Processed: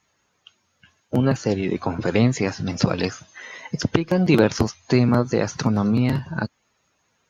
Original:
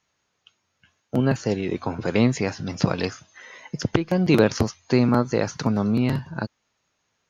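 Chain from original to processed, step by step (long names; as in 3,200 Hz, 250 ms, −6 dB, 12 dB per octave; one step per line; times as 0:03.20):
spectral magnitudes quantised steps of 15 dB
in parallel at −0.5 dB: downward compressor, threshold −29 dBFS, peak gain reduction 16 dB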